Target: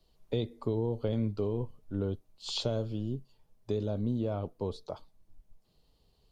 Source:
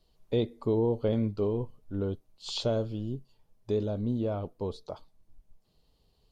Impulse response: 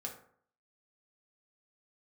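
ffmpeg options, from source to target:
-filter_complex "[0:a]acrossover=split=140|3000[s0][s1][s2];[s1]acompressor=threshold=0.0355:ratio=6[s3];[s0][s3][s2]amix=inputs=3:normalize=0"

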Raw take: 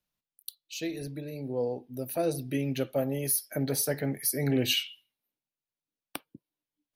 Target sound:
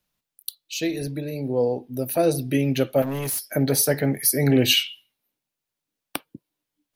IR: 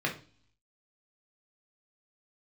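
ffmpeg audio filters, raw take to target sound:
-filter_complex "[0:a]asettb=1/sr,asplit=3[s0][s1][s2];[s0]atrim=end=3.024[s3];[s1]atrim=start=3.02:end=3.47,asetpts=PTS-STARTPTS,afade=t=in:d=0.004:c=qsin,afade=t=out:st=0.446:d=0.004:c=qsin,volume=47.3,asoftclip=hard,volume=0.0211[s4];[s2]atrim=start=3.466[s5];[s3][s4]acrossfade=d=0.004:c1=hsin:c2=qsin[s6];[s6][s5]acrossfade=d=0.004:c1=qsin:c2=hsin,volume=2.66"

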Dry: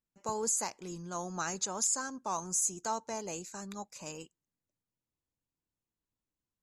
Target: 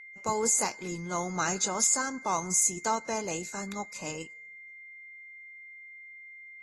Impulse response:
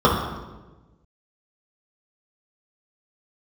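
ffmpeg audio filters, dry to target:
-filter_complex "[0:a]aeval=exprs='val(0)+0.00282*sin(2*PI*2100*n/s)':c=same,asplit=2[s0][s1];[s1]aderivative[s2];[1:a]atrim=start_sample=2205,asetrate=57330,aresample=44100[s3];[s2][s3]afir=irnorm=-1:irlink=0,volume=0.0473[s4];[s0][s4]amix=inputs=2:normalize=0,volume=1.88" -ar 32000 -c:a aac -b:a 32k

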